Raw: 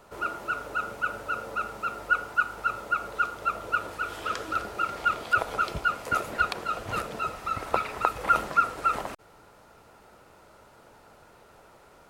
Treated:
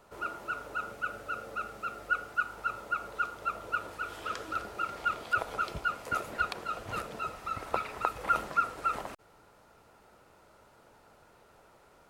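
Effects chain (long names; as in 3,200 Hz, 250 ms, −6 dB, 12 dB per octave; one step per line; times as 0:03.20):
0:00.92–0:02.45: notch filter 950 Hz, Q 5.5
level −5.5 dB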